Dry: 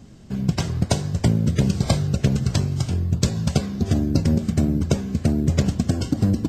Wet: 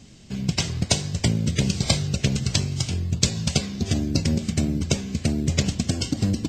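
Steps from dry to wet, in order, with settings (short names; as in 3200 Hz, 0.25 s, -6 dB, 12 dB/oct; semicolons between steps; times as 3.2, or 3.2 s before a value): band shelf 4100 Hz +10 dB 2.3 oct; gain -3.5 dB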